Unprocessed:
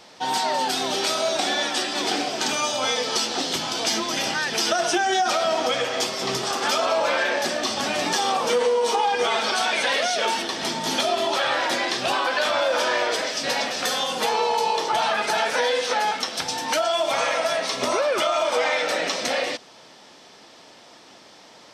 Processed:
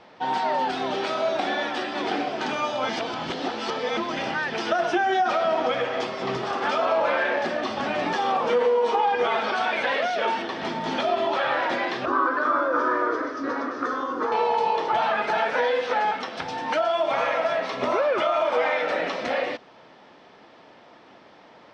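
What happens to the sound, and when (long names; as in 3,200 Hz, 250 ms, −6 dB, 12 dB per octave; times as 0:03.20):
0:02.89–0:03.97: reverse
0:12.05–0:14.32: drawn EQ curve 110 Hz 0 dB, 180 Hz −20 dB, 280 Hz +11 dB, 780 Hz −11 dB, 1,200 Hz +9 dB, 1,900 Hz −7 dB, 2,700 Hz −18 dB, 6,200 Hz −5 dB, 12,000 Hz −29 dB
whole clip: low-pass filter 2,200 Hz 12 dB per octave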